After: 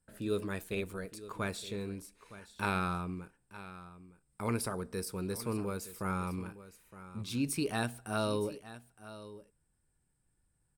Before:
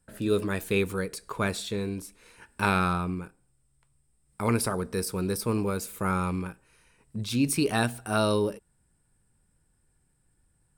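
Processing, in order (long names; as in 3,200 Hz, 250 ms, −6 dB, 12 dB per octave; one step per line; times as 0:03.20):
0:00.62–0:01.28: amplitude modulation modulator 180 Hz, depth 40%
on a send: single-tap delay 915 ms −15.5 dB
on the sum: level −8 dB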